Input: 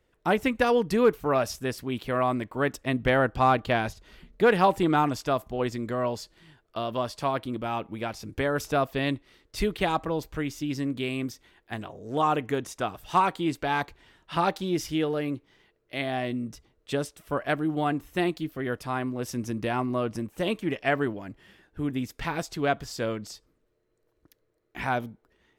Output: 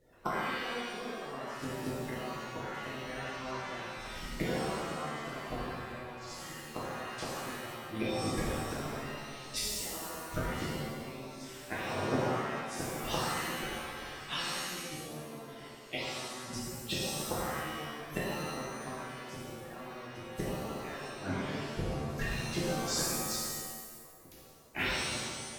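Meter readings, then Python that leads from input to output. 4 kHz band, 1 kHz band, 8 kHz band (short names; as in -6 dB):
-1.0 dB, -11.0 dB, +4.5 dB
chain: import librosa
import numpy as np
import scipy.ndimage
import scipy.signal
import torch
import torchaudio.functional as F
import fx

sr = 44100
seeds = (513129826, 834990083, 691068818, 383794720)

p1 = fx.spec_quant(x, sr, step_db=30)
p2 = p1 + fx.echo_feedback(p1, sr, ms=87, feedback_pct=22, wet_db=-12.0, dry=0)
p3 = fx.gate_flip(p2, sr, shuts_db=-24.0, range_db=-27)
y = fx.rev_shimmer(p3, sr, seeds[0], rt60_s=1.3, semitones=7, shimmer_db=-2, drr_db=-7.5)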